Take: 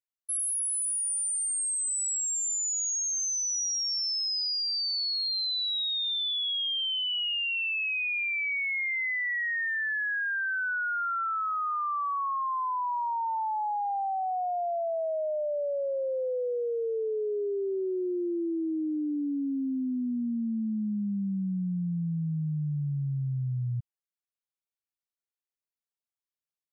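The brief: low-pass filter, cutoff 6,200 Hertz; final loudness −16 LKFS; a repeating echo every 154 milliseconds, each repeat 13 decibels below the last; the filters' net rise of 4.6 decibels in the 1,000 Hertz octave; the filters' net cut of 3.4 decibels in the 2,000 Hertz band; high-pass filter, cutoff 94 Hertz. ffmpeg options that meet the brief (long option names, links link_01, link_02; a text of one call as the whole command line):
ffmpeg -i in.wav -af "highpass=94,lowpass=6200,equalizer=frequency=1000:width_type=o:gain=7.5,equalizer=frequency=2000:width_type=o:gain=-7,aecho=1:1:154|308|462:0.224|0.0493|0.0108,volume=13dB" out.wav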